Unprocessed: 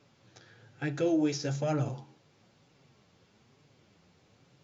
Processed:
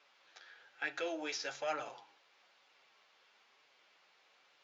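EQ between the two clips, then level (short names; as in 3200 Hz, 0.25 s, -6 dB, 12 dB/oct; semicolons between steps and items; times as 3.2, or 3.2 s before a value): HPF 740 Hz 12 dB/oct; LPF 3200 Hz 12 dB/oct; tilt +2.5 dB/oct; +1.0 dB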